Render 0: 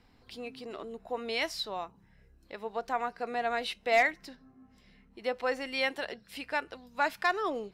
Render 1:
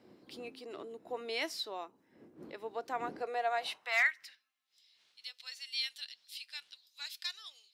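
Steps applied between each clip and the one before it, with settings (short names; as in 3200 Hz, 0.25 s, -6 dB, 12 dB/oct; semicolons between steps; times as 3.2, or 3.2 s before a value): wind noise 130 Hz -37 dBFS; high-pass sweep 320 Hz -> 3900 Hz, 3.07–4.7; tilt +1.5 dB/oct; gain -6.5 dB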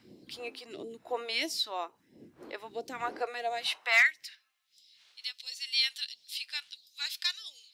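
phaser stages 2, 1.5 Hz, lowest notch 130–1400 Hz; gain +7 dB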